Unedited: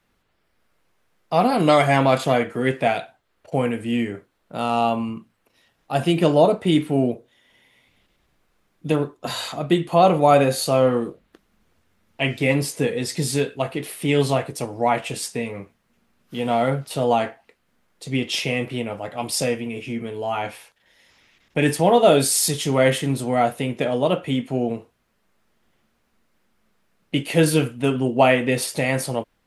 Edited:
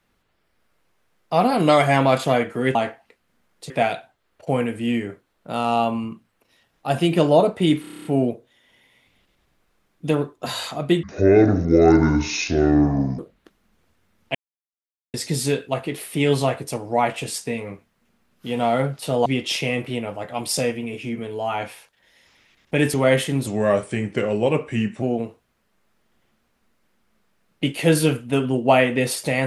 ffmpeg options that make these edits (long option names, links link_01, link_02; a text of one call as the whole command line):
ffmpeg -i in.wav -filter_complex "[0:a]asplit=19[link_01][link_02][link_03][link_04][link_05][link_06][link_07][link_08][link_09][link_10][link_11][link_12][link_13][link_14][link_15][link_16][link_17][link_18][link_19];[link_01]atrim=end=2.752[link_20];[link_02]atrim=start=17.138:end=18.092[link_21];[link_03]atrim=start=2.748:end=6.892[link_22];[link_04]atrim=start=6.858:end=6.892[link_23];[link_05]atrim=start=6.858:end=6.892[link_24];[link_06]atrim=start=6.858:end=6.892[link_25];[link_07]atrim=start=6.858:end=6.892[link_26];[link_08]atrim=start=6.858:end=6.892[link_27];[link_09]atrim=start=6.858:end=6.892[link_28];[link_10]atrim=start=6.858:end=6.892[link_29];[link_11]atrim=start=6.858:end=9.844[link_30];[link_12]atrim=start=9.84:end=11.07,asetpts=PTS-STARTPTS,asetrate=25137,aresample=44100,atrim=end_sample=95163,asetpts=PTS-STARTPTS[link_31];[link_13]atrim=start=11.066:end=12.23,asetpts=PTS-STARTPTS,afade=type=out:start_time=1.16:duration=0.004:curve=hsin[link_32];[link_14]atrim=start=12.23:end=13.02,asetpts=PTS-STARTPTS,volume=0[link_33];[link_15]atrim=start=13.02:end=17.142,asetpts=PTS-STARTPTS,afade=type=in:duration=0.004:curve=hsin[link_34];[link_16]atrim=start=18.088:end=21.772[link_35];[link_17]atrim=start=22.678:end=23.214[link_36];[link_18]atrim=start=23.21:end=24.53,asetpts=PTS-STARTPTS,asetrate=37485,aresample=44100[link_37];[link_19]atrim=start=24.526[link_38];[link_20][link_21]acrossfade=duration=0.004:curve1=hsin:curve2=hsin[link_39];[link_39][link_22]acrossfade=duration=0.004:curve1=hsin:curve2=hsin[link_40];[link_40][link_23]acrossfade=duration=0.004:curve1=hsin:curve2=hsin[link_41];[link_41][link_24]acrossfade=duration=0.004:curve1=hsin:curve2=hsin[link_42];[link_42][link_25]acrossfade=duration=0.004:curve1=hsin:curve2=hsin[link_43];[link_43][link_26]acrossfade=duration=0.004:curve1=hsin:curve2=hsin[link_44];[link_44][link_27]acrossfade=duration=0.004:curve1=hsin:curve2=hsin[link_45];[link_45][link_28]acrossfade=duration=0.004:curve1=hsin:curve2=hsin[link_46];[link_46][link_29]acrossfade=duration=0.004:curve1=hsin:curve2=hsin[link_47];[link_47][link_30]acrossfade=duration=0.004:curve1=hsin:curve2=hsin[link_48];[link_48][link_31]acrossfade=duration=0.004:curve1=hsin:curve2=hsin[link_49];[link_32][link_33][link_34]concat=n=3:v=0:a=1[link_50];[link_49][link_50]acrossfade=duration=0.004:curve1=hsin:curve2=hsin[link_51];[link_51][link_35]acrossfade=duration=0.004:curve1=hsin:curve2=hsin[link_52];[link_52][link_36]acrossfade=duration=0.004:curve1=hsin:curve2=hsin[link_53];[link_53][link_37]acrossfade=duration=0.004:curve1=hsin:curve2=hsin[link_54];[link_54][link_38]acrossfade=duration=0.004:curve1=hsin:curve2=hsin" out.wav